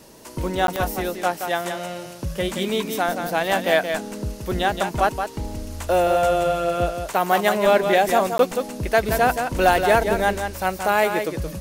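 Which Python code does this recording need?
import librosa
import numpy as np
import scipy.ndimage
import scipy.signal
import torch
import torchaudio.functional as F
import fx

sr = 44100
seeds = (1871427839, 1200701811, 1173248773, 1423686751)

y = fx.fix_declip(x, sr, threshold_db=-5.5)
y = fx.fix_declick_ar(y, sr, threshold=10.0)
y = fx.fix_interpolate(y, sr, at_s=(0.67, 8.38), length_ms=12.0)
y = fx.fix_echo_inverse(y, sr, delay_ms=174, level_db=-7.0)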